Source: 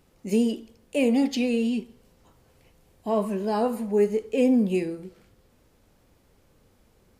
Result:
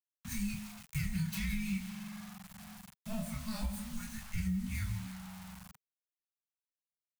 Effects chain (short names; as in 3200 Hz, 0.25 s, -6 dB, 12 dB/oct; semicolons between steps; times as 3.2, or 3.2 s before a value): tracing distortion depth 0.16 ms; high shelf 7200 Hz +9.5 dB; thin delay 0.165 s, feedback 48%, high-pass 1400 Hz, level -15.5 dB; dynamic EQ 140 Hz, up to -4 dB, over -34 dBFS, Q 0.89; limiter -18 dBFS, peak gain reduction 6.5 dB; notch comb 410 Hz; on a send at -18.5 dB: reverb RT60 3.5 s, pre-delay 4 ms; on the sum: chorus 0.47 Hz, depth 5.8 ms; bit-crush 8-bit; frequency shift -440 Hz; Chebyshev band-stop 160–820 Hz, order 2; compressor 6:1, threshold -32 dBFS, peak gain reduction 8 dB; gain +1 dB